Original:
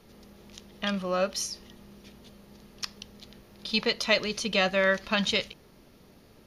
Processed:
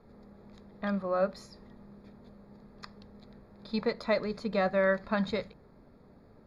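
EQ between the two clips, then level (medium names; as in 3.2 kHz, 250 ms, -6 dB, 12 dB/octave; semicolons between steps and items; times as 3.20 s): boxcar filter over 15 samples; peaking EQ 340 Hz -5.5 dB 0.21 oct; hum notches 60/120/180 Hz; 0.0 dB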